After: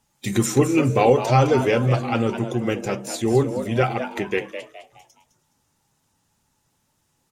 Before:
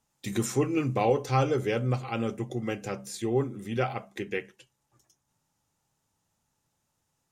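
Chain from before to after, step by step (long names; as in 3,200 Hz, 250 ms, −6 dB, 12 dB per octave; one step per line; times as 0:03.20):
spectral magnitudes quantised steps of 15 dB
echo with shifted repeats 209 ms, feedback 36%, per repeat +120 Hz, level −10 dB
level +8.5 dB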